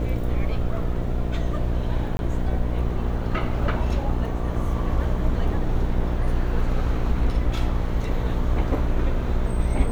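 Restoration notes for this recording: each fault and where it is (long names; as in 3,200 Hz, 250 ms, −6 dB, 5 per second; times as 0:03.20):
mains buzz 60 Hz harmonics 12 −27 dBFS
0:02.17–0:02.19: drop-out 21 ms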